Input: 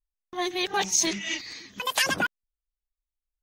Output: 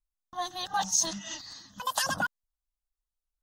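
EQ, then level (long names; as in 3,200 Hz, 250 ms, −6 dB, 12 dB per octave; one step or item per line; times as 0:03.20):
high-shelf EQ 11,000 Hz −5 dB
phaser with its sweep stopped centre 950 Hz, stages 4
0.0 dB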